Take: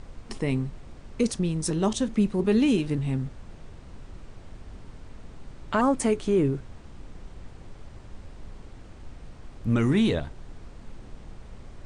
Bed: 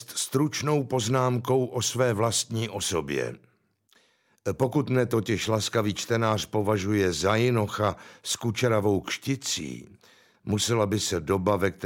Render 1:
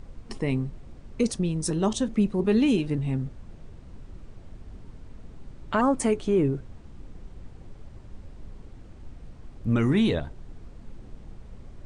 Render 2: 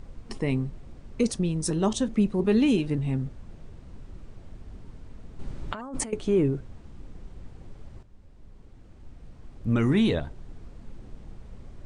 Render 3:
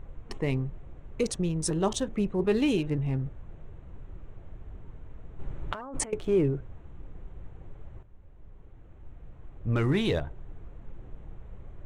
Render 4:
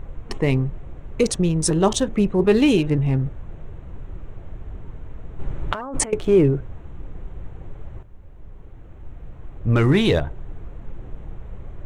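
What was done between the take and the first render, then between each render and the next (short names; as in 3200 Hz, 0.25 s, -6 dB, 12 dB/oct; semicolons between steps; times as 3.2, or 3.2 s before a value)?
denoiser 6 dB, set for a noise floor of -47 dBFS
5.39–6.13 negative-ratio compressor -33 dBFS; 8.03–9.9 fade in, from -12 dB
Wiener smoothing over 9 samples; bell 230 Hz -9 dB 0.48 oct
gain +9 dB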